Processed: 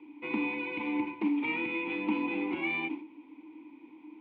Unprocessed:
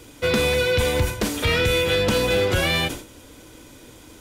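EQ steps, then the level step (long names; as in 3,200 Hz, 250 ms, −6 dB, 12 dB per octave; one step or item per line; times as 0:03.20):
formant filter u
loudspeaker in its box 190–3,400 Hz, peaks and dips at 200 Hz +6 dB, 310 Hz +6 dB, 580 Hz +7 dB, 1,000 Hz +7 dB, 1,700 Hz +8 dB, 2,500 Hz +6 dB
−1.5 dB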